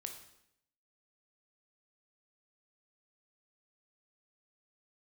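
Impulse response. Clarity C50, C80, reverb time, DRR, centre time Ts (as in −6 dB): 7.5 dB, 10.5 dB, 0.75 s, 4.0 dB, 20 ms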